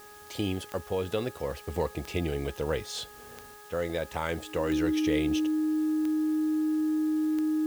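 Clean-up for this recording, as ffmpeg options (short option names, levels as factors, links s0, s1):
-af "adeclick=t=4,bandreject=f=417:t=h:w=4,bandreject=f=834:t=h:w=4,bandreject=f=1251:t=h:w=4,bandreject=f=1668:t=h:w=4,bandreject=f=310:w=30,afwtdn=0.002"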